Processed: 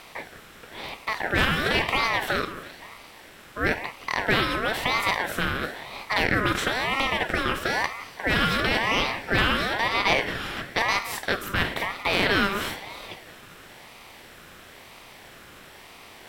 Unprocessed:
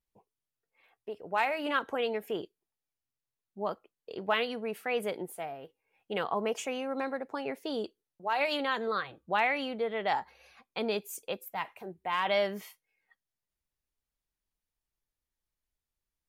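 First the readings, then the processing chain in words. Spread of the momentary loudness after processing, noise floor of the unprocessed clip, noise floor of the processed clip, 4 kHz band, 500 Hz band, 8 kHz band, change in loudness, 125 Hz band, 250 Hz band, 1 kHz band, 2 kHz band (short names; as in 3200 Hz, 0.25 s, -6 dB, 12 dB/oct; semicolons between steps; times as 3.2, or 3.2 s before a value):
16 LU, under -85 dBFS, -48 dBFS, +12.5 dB, +2.5 dB, +10.5 dB, +8.5 dB, +19.5 dB, +8.0 dB, +6.5 dB, +12.5 dB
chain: per-bin compression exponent 0.4; echo with dull and thin repeats by turns 0.173 s, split 1300 Hz, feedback 62%, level -12 dB; ring modulator with a swept carrier 1200 Hz, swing 35%, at 1 Hz; gain +4.5 dB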